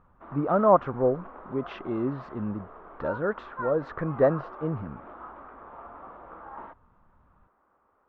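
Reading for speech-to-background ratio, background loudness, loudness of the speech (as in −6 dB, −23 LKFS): 15.0 dB, −43.0 LKFS, −28.0 LKFS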